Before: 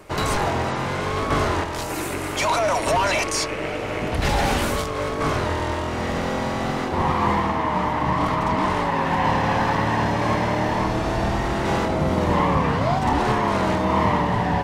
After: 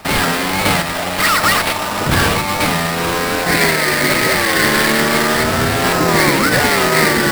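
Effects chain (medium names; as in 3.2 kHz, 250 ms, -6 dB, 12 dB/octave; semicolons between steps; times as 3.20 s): speed mistake 7.5 ips tape played at 15 ips; sample-rate reducer 6.5 kHz, jitter 20%; trim +7 dB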